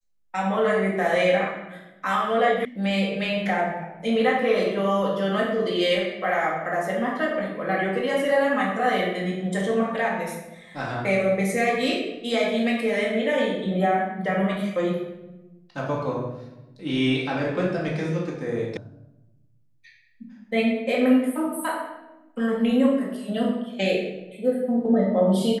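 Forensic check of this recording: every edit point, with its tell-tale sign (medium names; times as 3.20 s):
2.65 s: sound stops dead
18.77 s: sound stops dead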